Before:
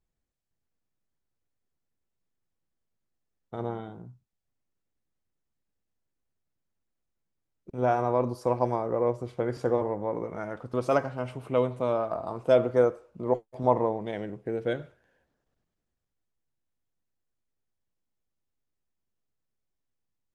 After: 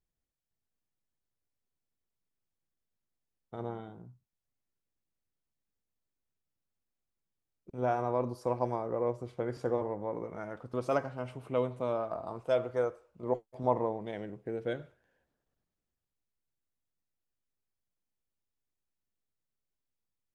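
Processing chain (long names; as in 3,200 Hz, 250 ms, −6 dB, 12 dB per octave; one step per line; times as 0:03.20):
0:12.40–0:13.23: parametric band 230 Hz −7.5 dB 1.9 octaves
level −5.5 dB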